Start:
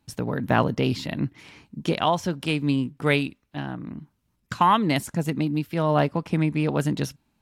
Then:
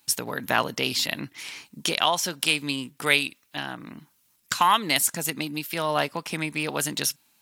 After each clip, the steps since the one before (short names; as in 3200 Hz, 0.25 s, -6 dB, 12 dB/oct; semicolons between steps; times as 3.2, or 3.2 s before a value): in parallel at +1.5 dB: compressor, threshold -29 dBFS, peak gain reduction 14.5 dB; on the sum: tilt +4.5 dB/oct; gain -3 dB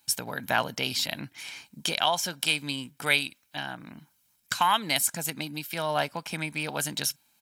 comb 1.3 ms, depth 38%; gain -3.5 dB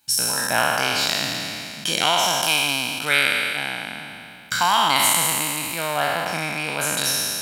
spectral trails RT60 2.60 s; gain +1 dB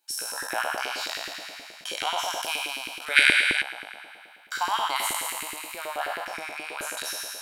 spectral gain 3.16–3.62, 1400–11000 Hz +11 dB; LFO high-pass saw up 9.4 Hz 320–2000 Hz; gain -11.5 dB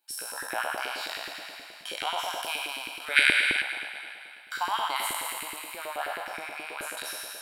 bell 6300 Hz -9 dB 0.43 oct; thinning echo 0.261 s, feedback 52%, high-pass 570 Hz, level -12.5 dB; gain -2.5 dB